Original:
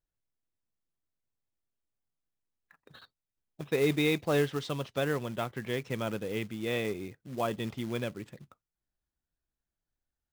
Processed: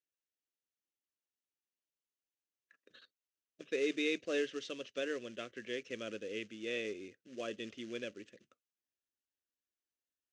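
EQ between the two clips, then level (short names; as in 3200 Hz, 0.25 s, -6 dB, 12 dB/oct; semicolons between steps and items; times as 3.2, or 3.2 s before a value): speaker cabinet 150–7200 Hz, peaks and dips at 160 Hz +4 dB, 540 Hz +4 dB, 1700 Hz +5 dB, 2800 Hz +8 dB, 6200 Hz +7 dB; fixed phaser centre 360 Hz, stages 4; -7.0 dB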